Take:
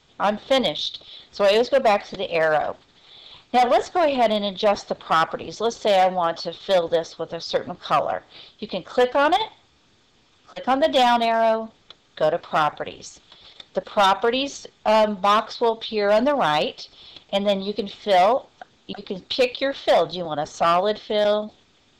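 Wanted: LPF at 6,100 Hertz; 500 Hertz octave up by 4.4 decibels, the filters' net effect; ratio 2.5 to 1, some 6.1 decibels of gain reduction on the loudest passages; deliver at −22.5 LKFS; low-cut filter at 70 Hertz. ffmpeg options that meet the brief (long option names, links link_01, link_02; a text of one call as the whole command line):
ffmpeg -i in.wav -af "highpass=70,lowpass=6100,equalizer=frequency=500:width_type=o:gain=5.5,acompressor=threshold=-19dB:ratio=2.5,volume=0.5dB" out.wav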